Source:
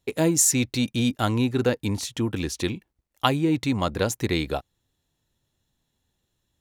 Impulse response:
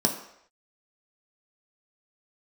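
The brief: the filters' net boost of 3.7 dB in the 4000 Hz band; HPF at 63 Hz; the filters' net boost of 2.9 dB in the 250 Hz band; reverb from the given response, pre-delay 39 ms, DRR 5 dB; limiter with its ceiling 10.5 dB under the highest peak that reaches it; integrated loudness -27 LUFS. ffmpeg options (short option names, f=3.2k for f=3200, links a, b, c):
-filter_complex "[0:a]highpass=63,equalizer=f=250:t=o:g=3.5,equalizer=f=4k:t=o:g=4.5,alimiter=limit=-12.5dB:level=0:latency=1,asplit=2[a][b];[1:a]atrim=start_sample=2205,adelay=39[c];[b][c]afir=irnorm=-1:irlink=0,volume=-16dB[d];[a][d]amix=inputs=2:normalize=0,volume=-6dB"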